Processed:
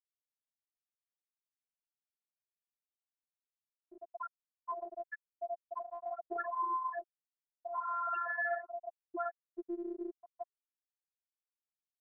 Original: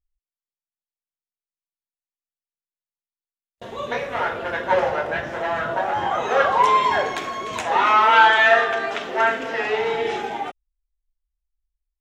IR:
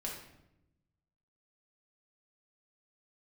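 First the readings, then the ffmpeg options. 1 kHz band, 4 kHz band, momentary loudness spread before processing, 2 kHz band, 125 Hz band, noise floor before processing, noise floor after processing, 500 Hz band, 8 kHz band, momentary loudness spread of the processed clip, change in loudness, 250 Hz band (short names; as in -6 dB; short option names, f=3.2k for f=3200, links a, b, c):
-20.0 dB, under -40 dB, 14 LU, -23.0 dB, under -40 dB, under -85 dBFS, under -85 dBFS, -20.5 dB, under -35 dB, 15 LU, -20.0 dB, -12.5 dB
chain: -af "afftfilt=real='re*gte(hypot(re,im),0.562)':imag='im*gte(hypot(re,im),0.562)':win_size=1024:overlap=0.75,afftfilt=real='hypot(re,im)*cos(PI*b)':imag='0':win_size=512:overlap=0.75,acompressor=threshold=-38dB:ratio=3,volume=-1dB"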